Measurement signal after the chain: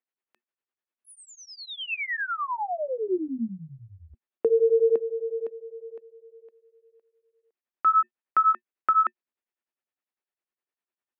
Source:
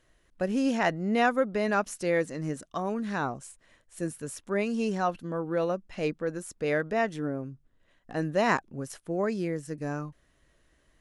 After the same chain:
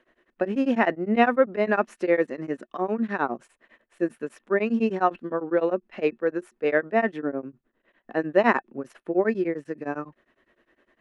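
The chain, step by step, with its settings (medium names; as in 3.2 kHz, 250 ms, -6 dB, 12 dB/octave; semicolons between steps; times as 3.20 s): three-band isolator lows -20 dB, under 240 Hz, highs -22 dB, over 3 kHz; small resonant body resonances 230/360/1800/2600 Hz, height 8 dB, ringing for 90 ms; tremolo of two beating tones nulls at 9.9 Hz; trim +7.5 dB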